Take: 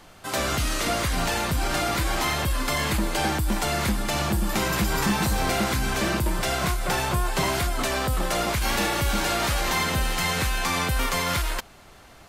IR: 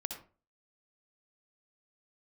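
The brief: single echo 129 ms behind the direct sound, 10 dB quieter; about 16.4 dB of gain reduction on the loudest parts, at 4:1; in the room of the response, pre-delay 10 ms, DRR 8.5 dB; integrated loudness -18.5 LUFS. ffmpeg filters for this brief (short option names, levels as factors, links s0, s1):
-filter_complex "[0:a]acompressor=threshold=0.00891:ratio=4,aecho=1:1:129:0.316,asplit=2[s0][s1];[1:a]atrim=start_sample=2205,adelay=10[s2];[s1][s2]afir=irnorm=-1:irlink=0,volume=0.376[s3];[s0][s3]amix=inputs=2:normalize=0,volume=11.2"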